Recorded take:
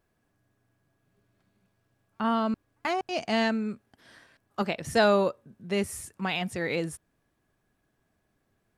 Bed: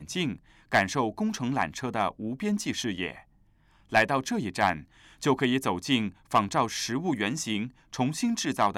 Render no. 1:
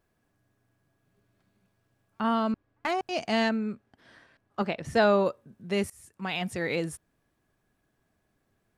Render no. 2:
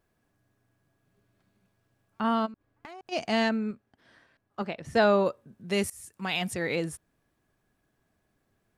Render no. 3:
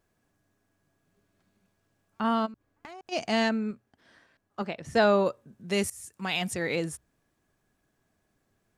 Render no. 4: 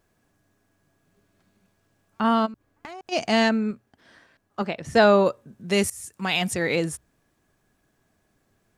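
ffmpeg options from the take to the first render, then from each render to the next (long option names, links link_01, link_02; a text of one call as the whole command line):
ffmpeg -i in.wav -filter_complex "[0:a]asettb=1/sr,asplit=3[link_01][link_02][link_03];[link_01]atrim=end=2.524[link_04];[link_02]atrim=start=2.52:end=2.92,asetpts=PTS-STARTPTS,afade=type=in:duration=0.004:curve=qsin,afade=type=out:start_time=0.396:duration=0.004:curve=qsin,adynamicsmooth=sensitivity=6.5:basefreq=3700[link_05];[link_03]atrim=start=2.916[link_06];[link_04][link_05]acrossfade=duration=0.004:curve1=hsin:curve2=qsin[link_07];[link_07][link_06]acrossfade=duration=0.004:curve1=qsin:curve2=hsin,asettb=1/sr,asplit=3[link_08][link_09][link_10];[link_08]atrim=end=3.494[link_11];[link_09]atrim=start=3.49:end=5.26,asetpts=PTS-STARTPTS,afade=type=in:duration=0.004:curve=qsin,afade=type=out:start_time=1.766:duration=0.004:curve=qsin,aemphasis=mode=reproduction:type=50kf[link_12];[link_10]atrim=start=5.256[link_13];[link_11][link_12]acrossfade=duration=0.004:curve1=hsin:curve2=qsin[link_14];[link_14][link_13]acrossfade=duration=0.004:curve1=qsin:curve2=hsin,asplit=2[link_15][link_16];[link_15]atrim=end=5.9,asetpts=PTS-STARTPTS,afade=type=out:start_time=5.896:duration=0.004:curve=hsin:silence=0.0749894[link_17];[link_16]atrim=start=5.9,asetpts=PTS-STARTPTS,afade=type=in:duration=0.55:silence=0.0749894[link_18];[link_17][link_18]concat=n=2:v=0:a=1" out.wav
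ffmpeg -i in.wav -filter_complex "[0:a]asplit=3[link_01][link_02][link_03];[link_01]afade=type=out:start_time=2.45:duration=0.02[link_04];[link_02]acompressor=threshold=-42dB:ratio=8:attack=3.2:release=140:knee=1:detection=peak,afade=type=in:start_time=2.45:duration=0.02,afade=type=out:start_time=3.11:duration=0.02[link_05];[link_03]afade=type=in:start_time=3.11:duration=0.02[link_06];[link_04][link_05][link_06]amix=inputs=3:normalize=0,asettb=1/sr,asplit=3[link_07][link_08][link_09];[link_07]atrim=end=5.684[link_10];[link_08]atrim=start=5.68:end=6.54,asetpts=PTS-STARTPTS,afade=type=in:duration=0.004:curve=qsin,afade=type=out:start_time=0.856:duration=0.004:curve=qsin,highshelf=frequency=3500:gain=7.5[link_11];[link_09]atrim=start=6.536[link_12];[link_10][link_11]acrossfade=duration=0.004:curve1=hsin:curve2=qsin[link_13];[link_13][link_12]acrossfade=duration=0.004:curve1=qsin:curve2=hsin,asplit=3[link_14][link_15][link_16];[link_14]atrim=end=3.712[link_17];[link_15]atrim=start=3.708:end=4.952,asetpts=PTS-STARTPTS,volume=-4dB[link_18];[link_16]atrim=start=4.948[link_19];[link_17][link_18]acrossfade=duration=0.004:curve1=hsin:curve2=hsin[link_20];[link_20][link_19]acrossfade=duration=0.004:curve1=hsin:curve2=hsin" out.wav
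ffmpeg -i in.wav -af "equalizer=frequency=6800:width=1.5:gain=4,bandreject=frequency=60:width_type=h:width=6,bandreject=frequency=120:width_type=h:width=6" out.wav
ffmpeg -i in.wav -af "volume=5.5dB" out.wav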